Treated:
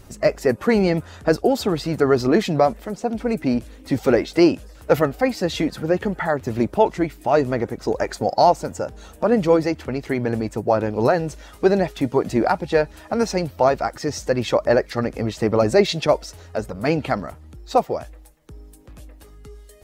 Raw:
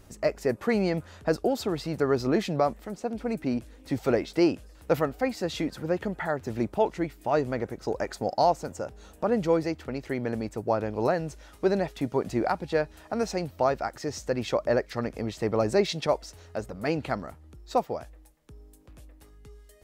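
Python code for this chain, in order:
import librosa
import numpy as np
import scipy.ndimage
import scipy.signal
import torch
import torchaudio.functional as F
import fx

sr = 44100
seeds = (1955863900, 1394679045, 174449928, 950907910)

y = fx.spec_quant(x, sr, step_db=15)
y = F.gain(torch.from_numpy(y), 8.0).numpy()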